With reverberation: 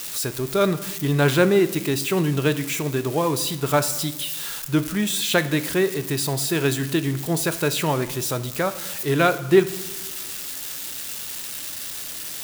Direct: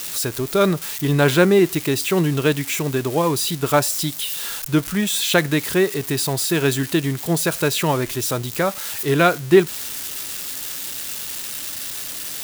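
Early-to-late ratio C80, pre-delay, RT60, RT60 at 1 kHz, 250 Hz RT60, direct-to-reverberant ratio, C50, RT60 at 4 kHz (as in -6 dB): 17.0 dB, 9 ms, 1.1 s, 1.0 s, 1.3 s, 12.0 dB, 15.0 dB, 0.75 s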